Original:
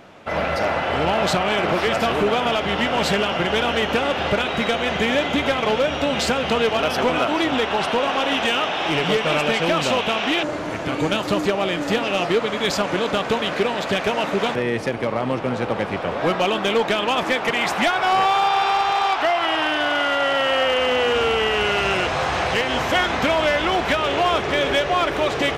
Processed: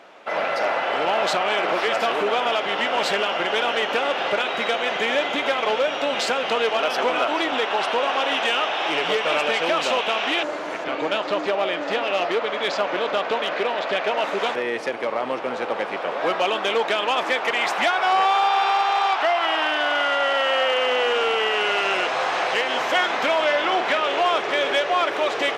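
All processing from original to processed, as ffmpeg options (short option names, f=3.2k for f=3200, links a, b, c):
-filter_complex "[0:a]asettb=1/sr,asplit=3[a][b][c];[a]atrim=end=10.844[d];[b]atrim=start=10.84:end=14.24,asetpts=PTS-STARTPTS,afade=t=in:d=0.004:c=qsin,afade=t=out:st=3.396:d=0.004:c=qsin,lowpass=4.3k,equalizer=f=630:t=o:w=0.39:g=3,aeval=exprs='clip(val(0),-1,0.133)':c=same[e];[c]atrim=start=14.236[f];[d][e]acrossfade=d=0.004:c1=hsin:c2=qsin[g];[g][f]acrossfade=d=0.004:c1=qsin:c2=hsin,asettb=1/sr,asplit=3[h][i][j];[h]atrim=end=23.444[k];[i]atrim=start=23.44:end=24.08,asetpts=PTS-STARTPTS,afade=t=in:d=0.004:c=qsin,afade=t=out:st=0.636:d=0.004:c=qsin,highshelf=f=11k:g=-11,asplit=2[l][m];[m]adelay=48,volume=-9.5dB[n];[l][n]amix=inputs=2:normalize=0,atrim=end_sample=28224[o];[j]atrim=start=24.076[p];[k][o]acrossfade=d=0.004:c1=hsin:c2=qsin[q];[q][p]acrossfade=d=0.004:c1=qsin:c2=hsin,highpass=430,highshelf=f=8.3k:g=-9,acontrast=29,volume=-5dB"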